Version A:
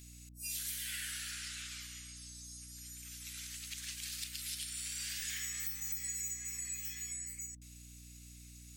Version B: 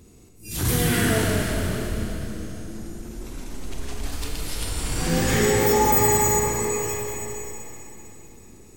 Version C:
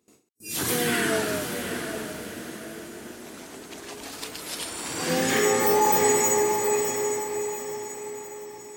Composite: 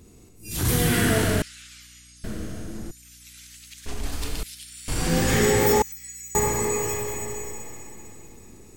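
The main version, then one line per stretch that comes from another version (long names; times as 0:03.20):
B
0:01.42–0:02.24: punch in from A
0:02.91–0:03.86: punch in from A
0:04.43–0:04.88: punch in from A
0:05.82–0:06.35: punch in from A
not used: C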